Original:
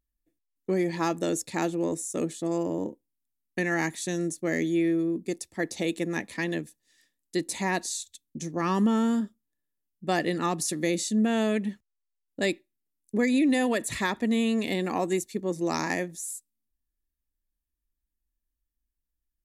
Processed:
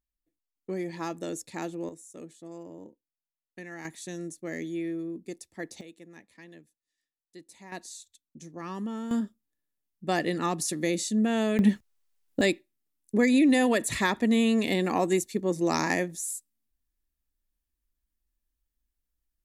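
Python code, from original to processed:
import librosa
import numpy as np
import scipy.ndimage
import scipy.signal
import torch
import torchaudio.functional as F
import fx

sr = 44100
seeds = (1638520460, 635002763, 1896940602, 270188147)

y = fx.gain(x, sr, db=fx.steps((0.0, -7.0), (1.89, -15.0), (3.85, -8.0), (5.81, -20.0), (7.72, -11.0), (9.11, -1.0), (11.59, 10.5), (12.41, 2.0)))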